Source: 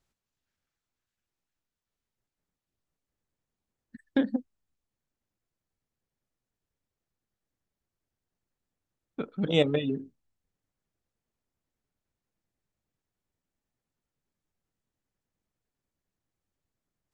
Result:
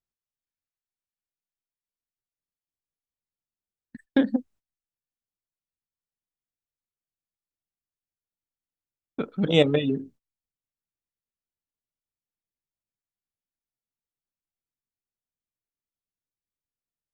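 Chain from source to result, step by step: gate -54 dBFS, range -20 dB; gain +4.5 dB

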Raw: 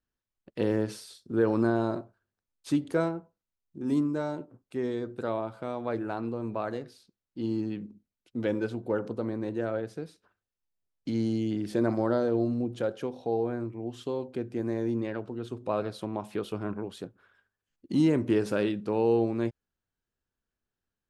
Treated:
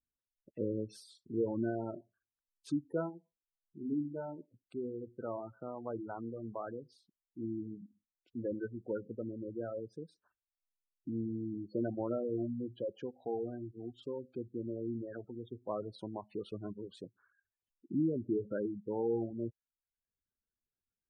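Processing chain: spectral gate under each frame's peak -15 dB strong; reverb removal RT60 0.53 s; gain -7.5 dB

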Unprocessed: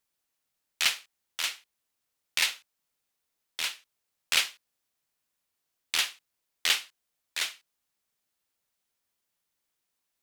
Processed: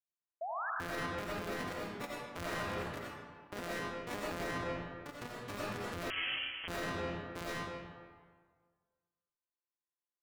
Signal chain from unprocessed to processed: sample sorter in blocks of 256 samples; echoes that change speed 0.51 s, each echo +3 st, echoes 3, each echo -6 dB; 2.54–3.62 compressor, threshold -34 dBFS, peak gain reduction 7 dB; harmonic-percussive split harmonic -14 dB; gate with hold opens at -58 dBFS; bell 1100 Hz +9.5 dB 2.8 oct; 0.41–0.7 painted sound rise 630–1800 Hz -33 dBFS; digital reverb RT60 1.6 s, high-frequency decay 0.7×, pre-delay 45 ms, DRR -2.5 dB; limiter -26 dBFS, peak gain reduction 17 dB; 6.1–6.68 inverted band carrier 3200 Hz; dynamic EQ 840 Hz, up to -6 dB, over -53 dBFS, Q 2.5; gain -2 dB

